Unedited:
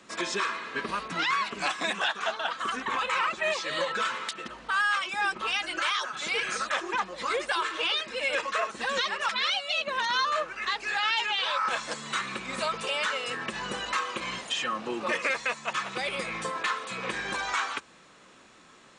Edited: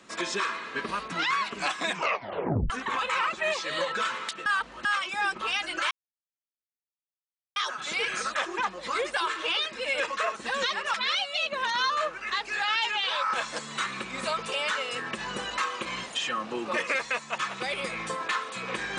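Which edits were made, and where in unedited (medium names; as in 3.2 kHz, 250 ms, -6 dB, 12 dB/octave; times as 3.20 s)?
1.89 s: tape stop 0.81 s
4.46–4.85 s: reverse
5.91 s: insert silence 1.65 s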